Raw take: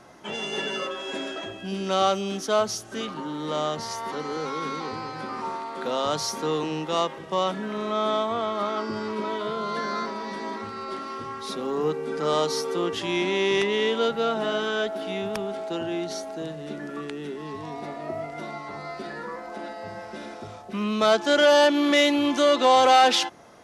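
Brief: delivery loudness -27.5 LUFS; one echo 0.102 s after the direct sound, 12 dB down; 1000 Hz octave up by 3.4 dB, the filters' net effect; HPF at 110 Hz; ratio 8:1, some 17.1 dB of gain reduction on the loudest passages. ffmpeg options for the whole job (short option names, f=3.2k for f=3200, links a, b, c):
-af "highpass=110,equalizer=f=1k:t=o:g=4.5,acompressor=threshold=-30dB:ratio=8,aecho=1:1:102:0.251,volume=6dB"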